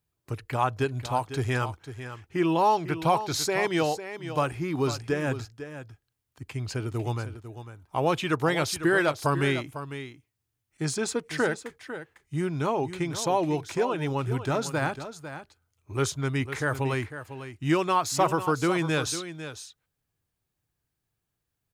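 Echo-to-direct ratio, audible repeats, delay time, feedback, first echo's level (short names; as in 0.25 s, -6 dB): -11.5 dB, 1, 0.5 s, no steady repeat, -11.5 dB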